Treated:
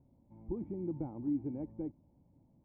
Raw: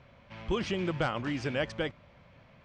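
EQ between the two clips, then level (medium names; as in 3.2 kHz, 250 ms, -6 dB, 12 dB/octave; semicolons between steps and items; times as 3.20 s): cascade formant filter u; distance through air 160 m; bass shelf 240 Hz +8 dB; -1.0 dB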